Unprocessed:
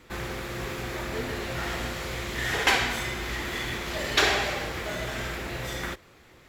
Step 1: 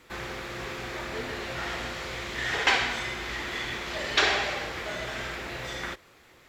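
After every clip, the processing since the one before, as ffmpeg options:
-filter_complex "[0:a]acrossover=split=6900[s0][s1];[s1]acompressor=threshold=0.00112:ratio=4:attack=1:release=60[s2];[s0][s2]amix=inputs=2:normalize=0,lowshelf=f=340:g=-7"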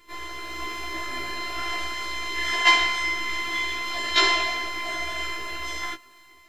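-af "dynaudnorm=f=180:g=5:m=1.58,afftfilt=real='hypot(re,im)*cos(PI*b)':imag='0':win_size=512:overlap=0.75,afftfilt=real='re*1.73*eq(mod(b,3),0)':imag='im*1.73*eq(mod(b,3),0)':win_size=2048:overlap=0.75,volume=2.11"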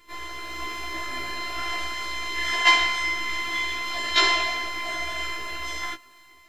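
-af "equalizer=f=370:w=3.9:g=-3"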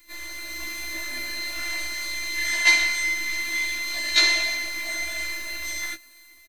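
-af "bandreject=f=400:w=12,aecho=1:1:3.4:0.74,crystalizer=i=3.5:c=0,volume=0.473"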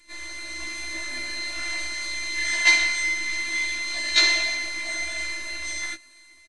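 -af "aresample=22050,aresample=44100"

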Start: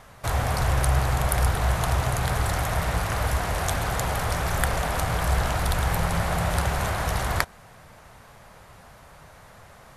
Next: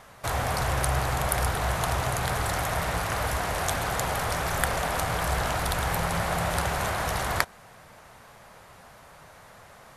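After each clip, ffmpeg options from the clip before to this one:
-af "lowshelf=f=130:g=-8.5"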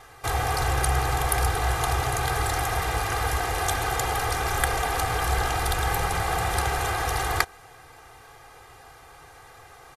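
-af "aecho=1:1:2.5:0.98,volume=0.891"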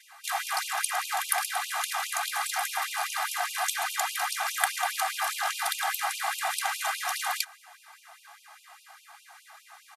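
-af "afftfilt=real='re*gte(b*sr/1024,560*pow(2500/560,0.5+0.5*sin(2*PI*4.9*pts/sr)))':imag='im*gte(b*sr/1024,560*pow(2500/560,0.5+0.5*sin(2*PI*4.9*pts/sr)))':win_size=1024:overlap=0.75"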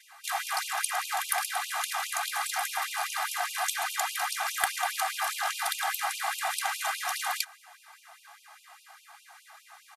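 -af "asoftclip=type=hard:threshold=0.316,volume=0.891"

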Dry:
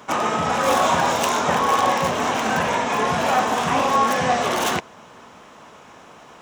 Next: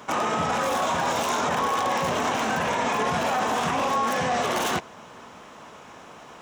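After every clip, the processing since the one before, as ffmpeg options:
-af "alimiter=limit=0.15:level=0:latency=1:release=25"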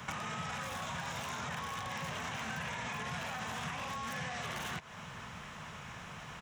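-filter_complex "[0:a]acompressor=threshold=0.0447:ratio=6,firequalizer=gain_entry='entry(150,0);entry(280,-19);entry(1800,-6);entry(4500,-10)':delay=0.05:min_phase=1,acrossover=split=260|2500[s0][s1][s2];[s0]acompressor=threshold=0.00178:ratio=4[s3];[s1]acompressor=threshold=0.00355:ratio=4[s4];[s2]acompressor=threshold=0.00178:ratio=4[s5];[s3][s4][s5]amix=inputs=3:normalize=0,volume=2.66"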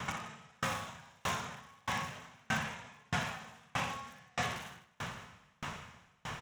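-filter_complex "[0:a]asplit=2[s0][s1];[s1]aecho=0:1:60|156|309.6|555.4|948.6:0.631|0.398|0.251|0.158|0.1[s2];[s0][s2]amix=inputs=2:normalize=0,aeval=exprs='val(0)*pow(10,-37*if(lt(mod(1.6*n/s,1),2*abs(1.6)/1000),1-mod(1.6*n/s,1)/(2*abs(1.6)/1000),(mod(1.6*n/s,1)-2*abs(1.6)/1000)/(1-2*abs(1.6)/1000))/20)':c=same,volume=2.24"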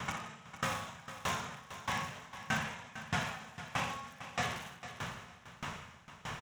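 -af "aecho=1:1:453|906|1359:0.237|0.0498|0.0105"

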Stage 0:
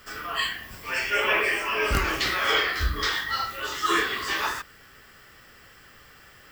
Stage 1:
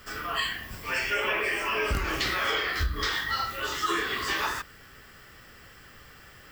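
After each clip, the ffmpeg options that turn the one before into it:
-af "lowshelf=f=260:g=4.5,acompressor=threshold=0.0631:ratio=6"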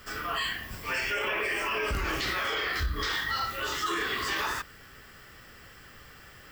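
-af "alimiter=limit=0.0841:level=0:latency=1:release=11"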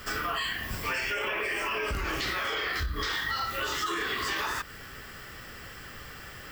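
-af "acompressor=threshold=0.0178:ratio=5,volume=2.11"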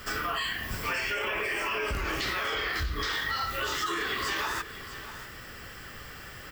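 -af "aecho=1:1:643:0.2"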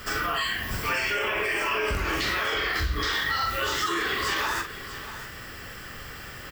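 -filter_complex "[0:a]asplit=2[s0][s1];[s1]adelay=44,volume=0.447[s2];[s0][s2]amix=inputs=2:normalize=0,volume=1.41"

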